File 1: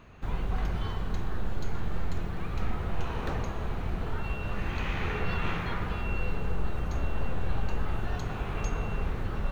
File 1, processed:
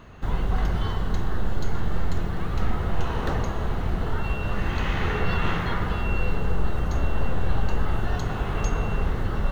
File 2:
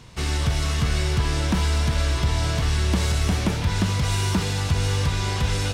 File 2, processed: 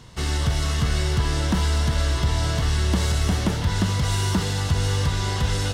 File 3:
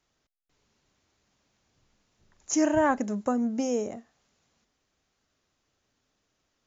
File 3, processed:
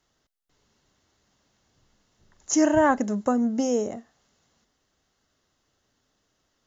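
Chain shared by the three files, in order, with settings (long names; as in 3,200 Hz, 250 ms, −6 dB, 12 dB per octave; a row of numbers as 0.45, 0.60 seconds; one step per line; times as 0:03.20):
notch filter 2,400 Hz, Q 7.4
normalise the peak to −9 dBFS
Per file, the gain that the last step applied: +6.0, 0.0, +3.5 decibels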